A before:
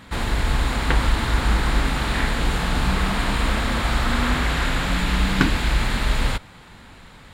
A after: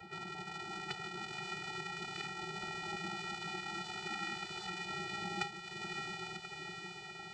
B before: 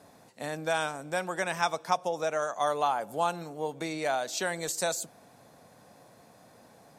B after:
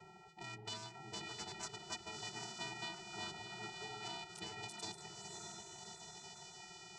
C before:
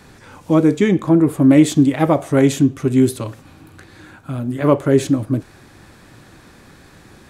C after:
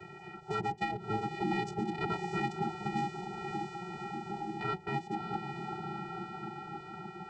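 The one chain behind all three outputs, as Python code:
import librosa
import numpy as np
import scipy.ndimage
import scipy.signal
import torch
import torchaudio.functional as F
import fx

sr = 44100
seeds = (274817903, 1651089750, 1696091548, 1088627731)

y = fx.wiener(x, sr, points=41)
y = fx.high_shelf(y, sr, hz=6000.0, db=5.5)
y = fx.echo_diffused(y, sr, ms=595, feedback_pct=48, wet_db=-9)
y = fx.dynamic_eq(y, sr, hz=950.0, q=2.2, threshold_db=-40.0, ratio=4.0, max_db=-6)
y = fx.vocoder(y, sr, bands=8, carrier='square', carrier_hz=271.0)
y = fx.spec_gate(y, sr, threshold_db=-25, keep='weak')
y = fx.band_squash(y, sr, depth_pct=70)
y = y * librosa.db_to_amplitude(8.0)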